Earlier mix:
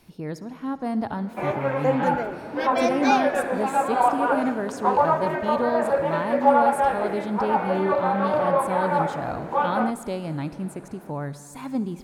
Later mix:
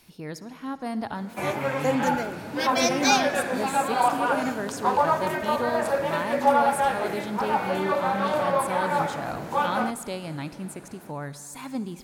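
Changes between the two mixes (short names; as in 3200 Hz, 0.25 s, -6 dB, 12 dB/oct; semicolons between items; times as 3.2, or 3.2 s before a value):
background: add tone controls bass +11 dB, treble +11 dB; master: add tilt shelf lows -5 dB, about 1400 Hz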